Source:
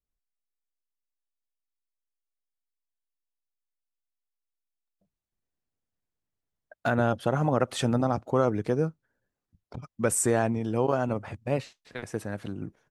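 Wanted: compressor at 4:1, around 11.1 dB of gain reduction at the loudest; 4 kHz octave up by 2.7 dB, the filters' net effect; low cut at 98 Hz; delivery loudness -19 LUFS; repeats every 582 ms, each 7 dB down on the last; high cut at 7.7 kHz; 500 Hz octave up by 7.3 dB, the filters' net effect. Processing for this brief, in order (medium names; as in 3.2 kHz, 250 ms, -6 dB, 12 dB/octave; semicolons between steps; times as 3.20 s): high-pass 98 Hz; low-pass 7.7 kHz; peaking EQ 500 Hz +8.5 dB; peaking EQ 4 kHz +3.5 dB; compression 4:1, threshold -27 dBFS; feedback delay 582 ms, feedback 45%, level -7 dB; trim +13 dB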